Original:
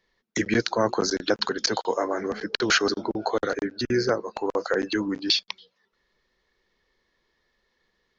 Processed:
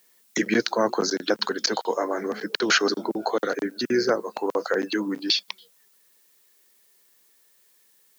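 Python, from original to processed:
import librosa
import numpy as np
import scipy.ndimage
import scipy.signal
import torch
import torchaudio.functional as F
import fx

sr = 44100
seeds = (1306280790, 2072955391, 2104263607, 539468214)

y = fx.rider(x, sr, range_db=4, speed_s=2.0)
y = fx.dmg_noise_colour(y, sr, seeds[0], colour='blue', level_db=-61.0)
y = scipy.signal.sosfilt(scipy.signal.butter(4, 170.0, 'highpass', fs=sr, output='sos'), y)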